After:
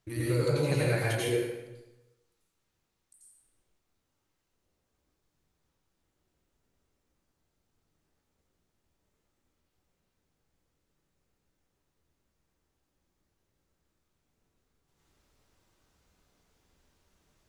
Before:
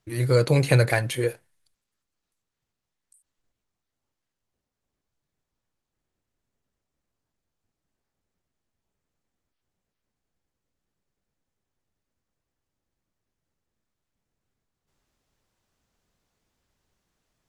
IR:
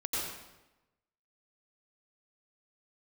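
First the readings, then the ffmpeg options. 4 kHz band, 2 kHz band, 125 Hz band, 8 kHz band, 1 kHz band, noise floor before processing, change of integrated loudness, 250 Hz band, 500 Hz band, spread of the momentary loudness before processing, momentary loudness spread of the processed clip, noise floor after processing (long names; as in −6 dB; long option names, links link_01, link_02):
−5.0 dB, −6.5 dB, −8.0 dB, −4.0 dB, −7.0 dB, −85 dBFS, −7.0 dB, −3.5 dB, −5.5 dB, 8 LU, 7 LU, −80 dBFS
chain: -filter_complex "[0:a]acompressor=threshold=-35dB:ratio=2.5[link_01];[1:a]atrim=start_sample=2205[link_02];[link_01][link_02]afir=irnorm=-1:irlink=0"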